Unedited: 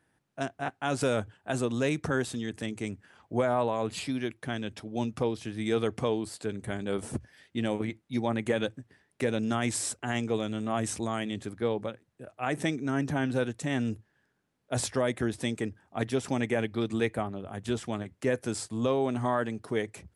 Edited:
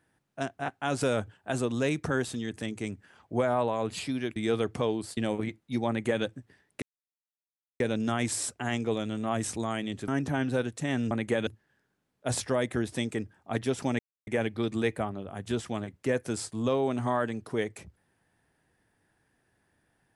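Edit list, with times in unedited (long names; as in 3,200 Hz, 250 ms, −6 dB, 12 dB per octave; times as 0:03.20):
0:04.36–0:05.59: remove
0:06.40–0:07.58: remove
0:08.29–0:08.65: duplicate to 0:13.93
0:09.23: splice in silence 0.98 s
0:11.51–0:12.90: remove
0:16.45: splice in silence 0.28 s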